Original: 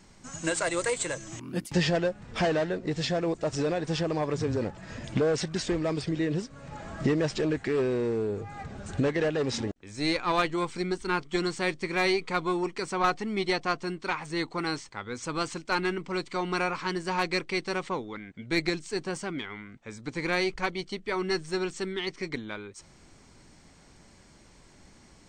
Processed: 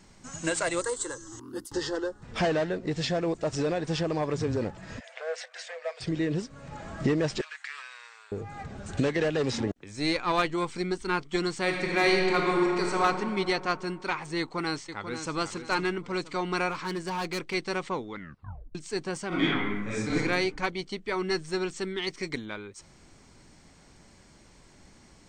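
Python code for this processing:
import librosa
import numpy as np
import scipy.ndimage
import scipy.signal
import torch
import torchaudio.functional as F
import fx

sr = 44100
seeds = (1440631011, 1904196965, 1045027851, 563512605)

y = fx.fixed_phaser(x, sr, hz=640.0, stages=6, at=(0.81, 2.23))
y = fx.cheby_ripple_highpass(y, sr, hz=480.0, ripple_db=9, at=(4.99, 6.0), fade=0.02)
y = fx.cheby2_highpass(y, sr, hz=350.0, order=4, stop_db=60, at=(7.41, 8.32))
y = fx.band_squash(y, sr, depth_pct=70, at=(8.97, 9.84))
y = fx.reverb_throw(y, sr, start_s=11.61, length_s=1.41, rt60_s=2.8, drr_db=-0.5)
y = fx.echo_throw(y, sr, start_s=14.39, length_s=0.96, ms=490, feedback_pct=40, wet_db=-9.0)
y = fx.clip_hard(y, sr, threshold_db=-28.0, at=(16.71, 17.54))
y = fx.reverb_throw(y, sr, start_s=19.28, length_s=0.88, rt60_s=0.96, drr_db=-11.0)
y = fx.high_shelf(y, sr, hz=6900.0, db=11.0, at=(22.02, 22.46))
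y = fx.edit(y, sr, fx.tape_stop(start_s=18.16, length_s=0.59), tone=tone)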